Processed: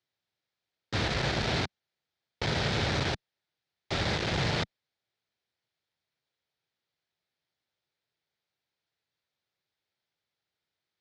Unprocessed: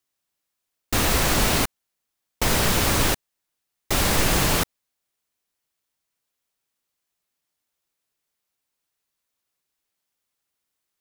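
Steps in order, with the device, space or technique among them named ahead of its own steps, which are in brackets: guitar amplifier (valve stage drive 26 dB, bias 0.55; tone controls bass +7 dB, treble +8 dB; cabinet simulation 110–3900 Hz, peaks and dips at 190 Hz -6 dB, 270 Hz -8 dB, 1.1 kHz -7 dB, 2.8 kHz -5 dB); trim +2 dB

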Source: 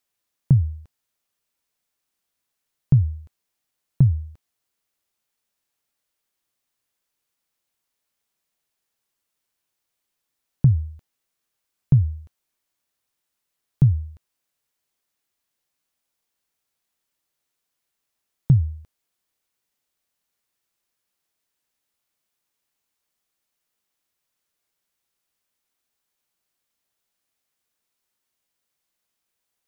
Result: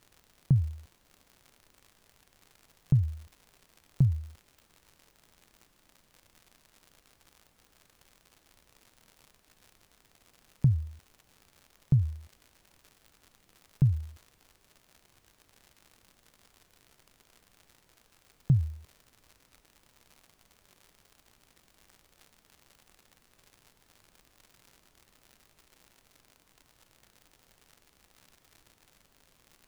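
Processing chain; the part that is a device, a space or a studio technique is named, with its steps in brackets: vinyl LP (crackle 110 per s -35 dBFS; pink noise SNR 31 dB); trim -7.5 dB

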